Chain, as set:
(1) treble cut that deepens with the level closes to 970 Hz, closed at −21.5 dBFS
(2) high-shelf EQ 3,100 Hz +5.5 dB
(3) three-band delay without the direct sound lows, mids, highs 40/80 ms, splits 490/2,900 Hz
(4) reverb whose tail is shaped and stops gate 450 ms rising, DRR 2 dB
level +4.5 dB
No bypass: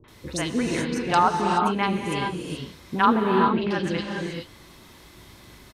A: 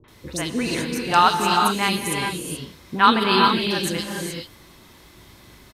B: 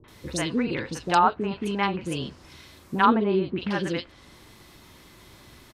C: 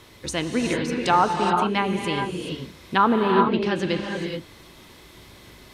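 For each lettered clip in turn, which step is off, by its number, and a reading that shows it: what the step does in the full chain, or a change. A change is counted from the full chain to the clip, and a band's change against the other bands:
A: 1, 4 kHz band +8.5 dB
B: 4, echo-to-direct ratio 15.0 dB to 13.0 dB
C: 3, echo-to-direct ratio 15.0 dB to −2.0 dB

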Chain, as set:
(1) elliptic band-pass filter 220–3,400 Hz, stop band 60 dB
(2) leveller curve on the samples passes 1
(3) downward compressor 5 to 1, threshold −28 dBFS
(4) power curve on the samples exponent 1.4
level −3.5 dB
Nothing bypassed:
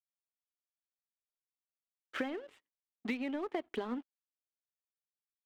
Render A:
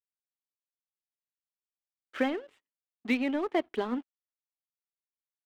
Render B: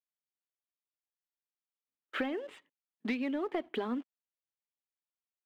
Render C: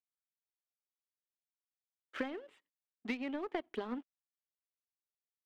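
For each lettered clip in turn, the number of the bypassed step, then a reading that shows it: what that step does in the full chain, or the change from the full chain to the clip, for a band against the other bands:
3, change in momentary loudness spread +3 LU
4, change in crest factor −3.0 dB
2, change in crest factor +3.5 dB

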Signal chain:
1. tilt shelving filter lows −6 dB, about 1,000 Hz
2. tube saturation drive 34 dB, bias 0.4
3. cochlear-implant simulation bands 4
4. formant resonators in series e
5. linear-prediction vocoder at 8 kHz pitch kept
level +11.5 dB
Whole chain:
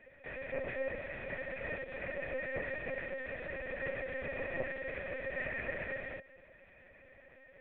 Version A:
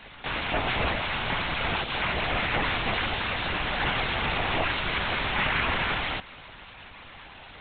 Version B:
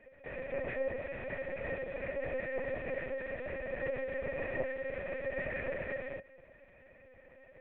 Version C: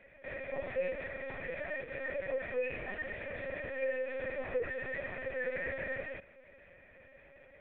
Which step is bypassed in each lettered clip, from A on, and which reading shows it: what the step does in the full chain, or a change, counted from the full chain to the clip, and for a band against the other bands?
4, 500 Hz band −10.5 dB
1, 2 kHz band −4.0 dB
3, change in crest factor −2.5 dB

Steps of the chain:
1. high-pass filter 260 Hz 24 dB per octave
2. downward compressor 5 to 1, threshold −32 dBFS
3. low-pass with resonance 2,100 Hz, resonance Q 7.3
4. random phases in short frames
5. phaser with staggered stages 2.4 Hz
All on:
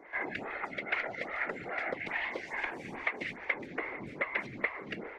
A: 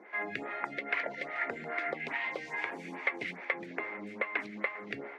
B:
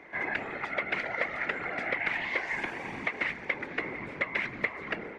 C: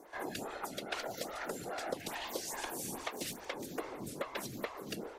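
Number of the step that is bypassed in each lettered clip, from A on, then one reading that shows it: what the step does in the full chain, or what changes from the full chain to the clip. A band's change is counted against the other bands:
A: 4, 125 Hz band −2.5 dB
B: 5, change in crest factor −1.5 dB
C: 3, 2 kHz band −11.5 dB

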